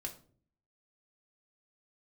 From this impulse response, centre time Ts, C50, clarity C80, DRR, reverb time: 12 ms, 12.5 dB, 17.0 dB, 1.0 dB, 0.50 s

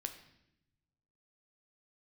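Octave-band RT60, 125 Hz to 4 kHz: 1.7 s, 1.3 s, 0.90 s, 0.75 s, 0.80 s, 0.75 s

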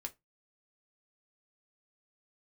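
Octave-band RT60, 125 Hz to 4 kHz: 0.30 s, 0.20 s, 0.20 s, 0.15 s, 0.15 s, 0.15 s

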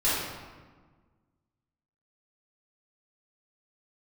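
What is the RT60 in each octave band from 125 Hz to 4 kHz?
1.9 s, 1.9 s, 1.4 s, 1.4 s, 1.2 s, 0.90 s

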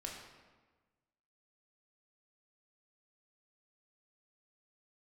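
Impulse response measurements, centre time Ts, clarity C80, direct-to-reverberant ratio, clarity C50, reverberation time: 53 ms, 5.0 dB, -2.0 dB, 3.5 dB, 1.3 s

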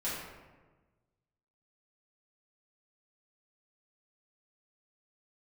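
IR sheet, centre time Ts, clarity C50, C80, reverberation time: 78 ms, 0.0 dB, 2.5 dB, 1.3 s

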